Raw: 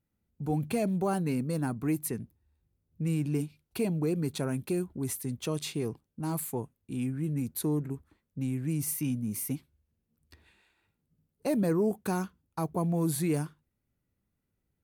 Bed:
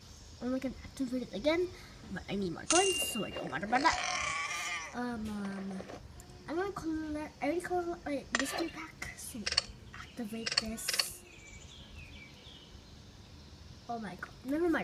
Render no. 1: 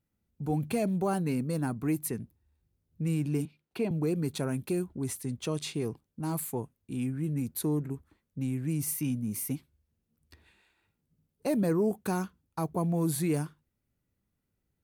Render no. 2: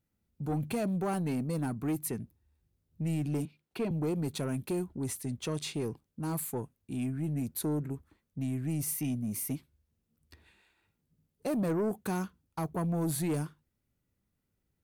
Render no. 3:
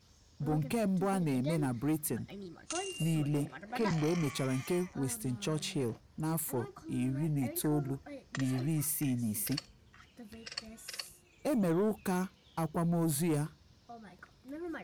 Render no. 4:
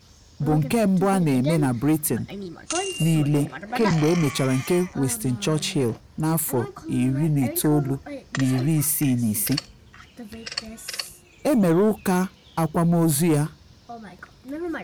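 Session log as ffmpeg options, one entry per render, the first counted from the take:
-filter_complex "[0:a]asettb=1/sr,asplit=3[s0][s1][s2];[s0]atrim=end=3.454[s3];[s1]atrim=start=3.45:end=3.91,asetpts=PTS-STARTPTS,afade=t=in:d=0.004:c=qsin,afade=t=out:st=0.456:d=0.004:c=qsin,acrossover=split=150 4100:gain=0.141 1 0.224[s4][s5][s6];[s4][s5][s6]amix=inputs=3:normalize=0[s7];[s2]atrim=start=3.906[s8];[s3][s7]acrossfade=d=0.004:c1=hsin:c2=qsin[s9];[s9][s8]acrossfade=d=0.004:c1=qsin:c2=hsin,asettb=1/sr,asplit=3[s10][s11][s12];[s10]atrim=end=4.904[s13];[s11]atrim=start=4.9:end=5.81,asetpts=PTS-STARTPTS,afade=t=in:d=0.004:c=qsin,afade=t=out:st=0.906:d=0.004:c=qsin,equalizer=f=14000:w=1.8:g=-11.5[s14];[s12]atrim=start=5.806[s15];[s13][s14]acrossfade=d=0.004:c1=hsin:c2=qsin[s16];[s16][s15]acrossfade=d=0.004:c1=qsin:c2=hsin"
-af "asoftclip=type=tanh:threshold=0.0531"
-filter_complex "[1:a]volume=0.299[s0];[0:a][s0]amix=inputs=2:normalize=0"
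-af "volume=3.76"

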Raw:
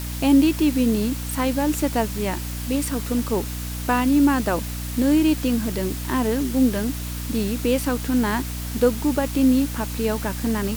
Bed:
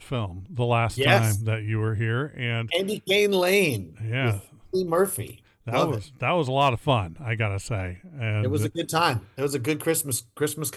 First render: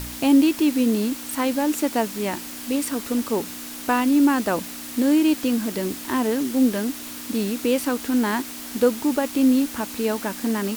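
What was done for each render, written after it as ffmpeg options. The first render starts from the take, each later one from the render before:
-af "bandreject=f=60:t=h:w=4,bandreject=f=120:t=h:w=4,bandreject=f=180:t=h:w=4"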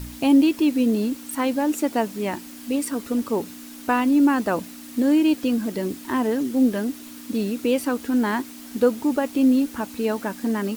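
-af "afftdn=nr=8:nf=-35"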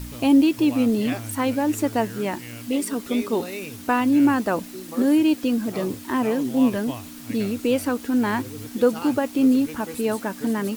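-filter_complex "[1:a]volume=0.211[s0];[0:a][s0]amix=inputs=2:normalize=0"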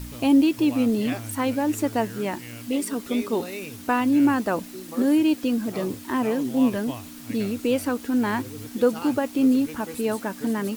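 -af "volume=0.841"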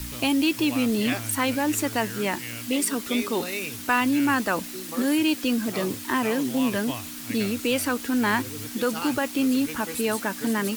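-filter_complex "[0:a]acrossover=split=130|1200[s0][s1][s2];[s1]alimiter=limit=0.119:level=0:latency=1[s3];[s2]acontrast=79[s4];[s0][s3][s4]amix=inputs=3:normalize=0"

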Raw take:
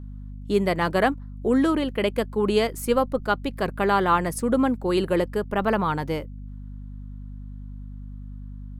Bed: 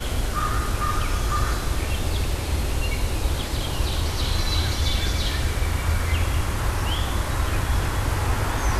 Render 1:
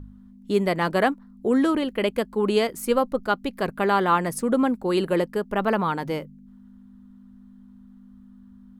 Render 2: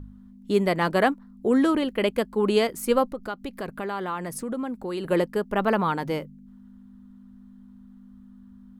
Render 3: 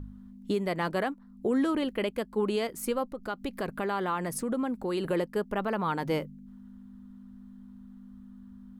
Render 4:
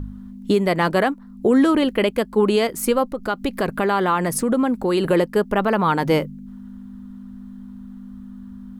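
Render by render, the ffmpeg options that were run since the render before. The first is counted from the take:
-af "bandreject=f=50:t=h:w=4,bandreject=f=100:t=h:w=4,bandreject=f=150:t=h:w=4"
-filter_complex "[0:a]asettb=1/sr,asplit=3[s0][s1][s2];[s0]atrim=end=3.104[s3];[s1]atrim=start=3.1:end=5.05,asetpts=PTS-STARTPTS,afade=t=in:d=0.004:c=qsin,afade=t=out:st=1.946:d=0.004:c=qsin,acompressor=threshold=0.0282:ratio=2.5:attack=3.2:release=140:knee=1:detection=peak[s4];[s2]atrim=start=5.046[s5];[s3][s4]acrossfade=d=0.004:c1=hsin:c2=qsin[s6];[s6][s5]acrossfade=d=0.004:c1=qsin:c2=hsin"
-af "alimiter=limit=0.112:level=0:latency=1:release=472"
-af "volume=3.55"

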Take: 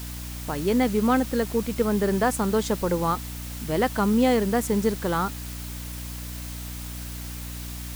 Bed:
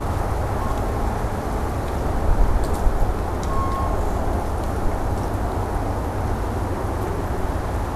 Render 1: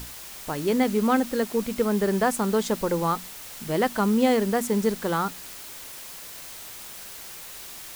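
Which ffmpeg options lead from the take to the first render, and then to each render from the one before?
-af "bandreject=f=60:t=h:w=6,bandreject=f=120:t=h:w=6,bandreject=f=180:t=h:w=6,bandreject=f=240:t=h:w=6,bandreject=f=300:t=h:w=6"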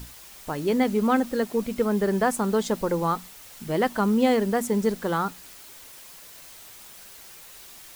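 -af "afftdn=nr=6:nf=-41"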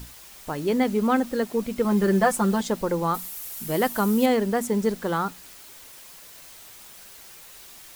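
-filter_complex "[0:a]asettb=1/sr,asplit=3[s0][s1][s2];[s0]atrim=end=1.844[s3];[s1]atrim=start=1.84:end=2.61,asetpts=PTS-STARTPTS,afade=t=in:d=0.004:c=qsin,afade=t=out:st=0.766:d=0.004:c=qsin,aecho=1:1:5.7:0.84,atrim=end_sample=33957[s4];[s2]atrim=start=2.606[s5];[s3][s4]acrossfade=d=0.004:c1=hsin:c2=qsin[s6];[s6][s5]acrossfade=d=0.004:c1=qsin:c2=hsin,asettb=1/sr,asplit=3[s7][s8][s9];[s7]atrim=end=3.144[s10];[s8]atrim=start=3.14:end=4.26,asetpts=PTS-STARTPTS,afade=t=in:d=0.004:c=qsin,afade=t=out:st=1.116:d=0.004:c=qsin,equalizer=f=14000:t=o:w=1.2:g=14.5[s11];[s9]atrim=start=4.256[s12];[s10][s11]acrossfade=d=0.004:c1=hsin:c2=qsin[s13];[s13][s12]acrossfade=d=0.004:c1=qsin:c2=hsin"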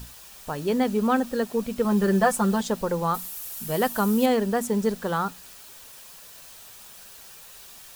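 -af "equalizer=f=320:t=o:w=0.24:g=-9,bandreject=f=2100:w=9.9"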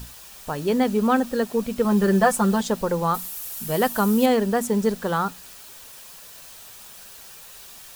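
-af "volume=1.33"

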